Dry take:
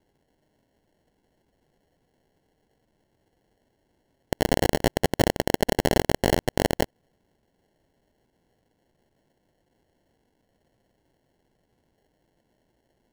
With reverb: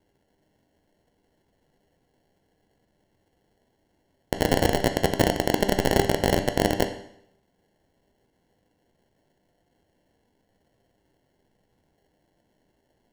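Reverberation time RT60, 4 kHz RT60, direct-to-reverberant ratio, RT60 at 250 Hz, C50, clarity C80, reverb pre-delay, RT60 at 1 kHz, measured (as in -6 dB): 0.70 s, 0.70 s, 6.0 dB, 0.70 s, 10.0 dB, 12.5 dB, 10 ms, 0.70 s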